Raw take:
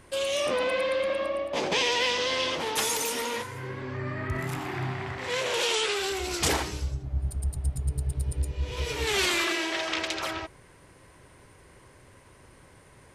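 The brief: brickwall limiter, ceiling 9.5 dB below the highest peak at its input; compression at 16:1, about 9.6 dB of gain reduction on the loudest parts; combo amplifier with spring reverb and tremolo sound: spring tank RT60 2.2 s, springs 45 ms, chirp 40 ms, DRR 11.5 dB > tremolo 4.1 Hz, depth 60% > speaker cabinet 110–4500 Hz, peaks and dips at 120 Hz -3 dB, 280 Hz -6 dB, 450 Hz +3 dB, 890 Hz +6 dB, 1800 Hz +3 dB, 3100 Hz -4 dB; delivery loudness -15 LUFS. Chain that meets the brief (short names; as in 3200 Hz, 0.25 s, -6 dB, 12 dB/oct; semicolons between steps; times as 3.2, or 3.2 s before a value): compressor 16:1, threshold -32 dBFS; limiter -30.5 dBFS; spring tank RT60 2.2 s, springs 45 ms, chirp 40 ms, DRR 11.5 dB; tremolo 4.1 Hz, depth 60%; speaker cabinet 110–4500 Hz, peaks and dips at 120 Hz -3 dB, 280 Hz -6 dB, 450 Hz +3 dB, 890 Hz +6 dB, 1800 Hz +3 dB, 3100 Hz -4 dB; gain +26.5 dB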